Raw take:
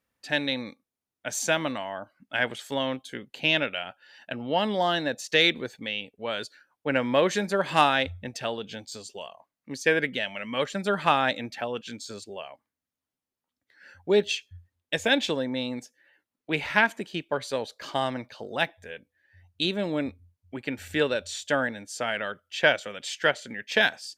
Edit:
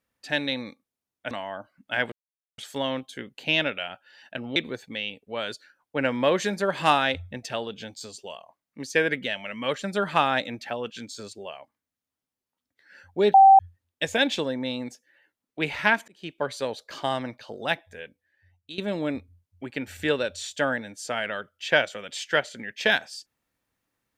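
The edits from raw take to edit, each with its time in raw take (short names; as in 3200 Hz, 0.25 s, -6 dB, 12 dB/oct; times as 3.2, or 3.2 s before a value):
1.31–1.73 cut
2.54 insert silence 0.46 s
4.52–5.47 cut
14.25–14.5 bleep 777 Hz -9 dBFS
16.99–17.31 fade in
18.94–19.69 fade out, to -17 dB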